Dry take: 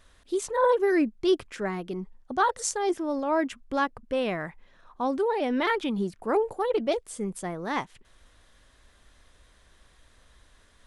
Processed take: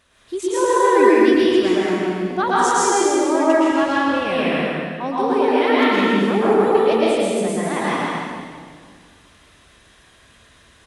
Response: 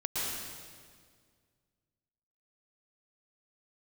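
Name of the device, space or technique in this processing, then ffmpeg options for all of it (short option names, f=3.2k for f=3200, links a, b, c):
stadium PA: -filter_complex "[0:a]highpass=120,lowshelf=f=65:g=10.5,equalizer=f=2.6k:t=o:w=0.41:g=5,aecho=1:1:163.3|242:0.562|0.355[a];[1:a]atrim=start_sample=2205[b];[a][b]afir=irnorm=-1:irlink=0,volume=2dB"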